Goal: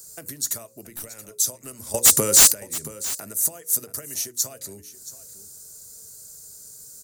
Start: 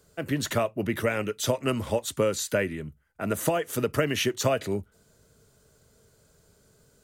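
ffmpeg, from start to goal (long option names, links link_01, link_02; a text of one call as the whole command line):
ffmpeg -i in.wav -filter_complex "[0:a]bandreject=frequency=60:width_type=h:width=6,bandreject=frequency=120:width_type=h:width=6,bandreject=frequency=180:width_type=h:width=6,bandreject=frequency=240:width_type=h:width=6,bandreject=frequency=300:width_type=h:width=6,bandreject=frequency=360:width_type=h:width=6,bandreject=frequency=420:width_type=h:width=6,bandreject=frequency=480:width_type=h:width=6,bandreject=frequency=540:width_type=h:width=6,acompressor=threshold=-39dB:ratio=12,aexciter=amount=7.7:drive=8.9:freq=4600,asettb=1/sr,asplit=3[link_01][link_02][link_03];[link_01]atrim=end=0.814[link_04];[link_02]atrim=start=0.81:end=1.31,asetpts=PTS-STARTPTS,afade=type=in:duration=0.004:curve=qsin,afade=type=out:start_time=0.496:duration=0.004:curve=qsin,aeval=exprs='(tanh(12.6*val(0)+0.65)-tanh(0.65))/12.6':channel_layout=same[link_05];[link_03]atrim=start=1.306[link_06];[link_04][link_05]acrossfade=duration=0.004:curve1=hsin:curve2=qsin[link_07];[link_07][link_06]acrossfade=duration=0.004:curve1=qsin:curve2=hsin,asettb=1/sr,asplit=3[link_08][link_09][link_10];[link_08]atrim=end=1.944[link_11];[link_09]atrim=start=1.94:end=2.52,asetpts=PTS-STARTPTS,afade=type=in:duration=0.004:curve=qsin,afade=type=out:start_time=0.576:duration=0.004:curve=qsin,aeval=exprs='0.422*sin(PI/2*5.01*val(0)/0.422)':channel_layout=same[link_12];[link_10]atrim=start=2.516[link_13];[link_11][link_12]acrossfade=duration=0.004:curve1=hsin:curve2=qsin[link_14];[link_14][link_13]acrossfade=duration=0.004:curve1=qsin:curve2=hsin,asplit=2[link_15][link_16];[link_16]aecho=0:1:676:0.158[link_17];[link_15][link_17]amix=inputs=2:normalize=0" out.wav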